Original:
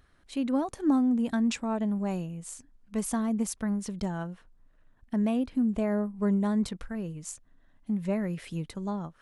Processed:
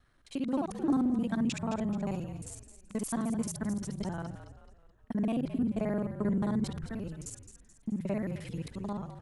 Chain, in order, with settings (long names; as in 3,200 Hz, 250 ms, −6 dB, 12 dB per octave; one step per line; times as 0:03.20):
reversed piece by piece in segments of 44 ms
echo with shifted repeats 215 ms, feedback 44%, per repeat −57 Hz, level −11.5 dB
level −3.5 dB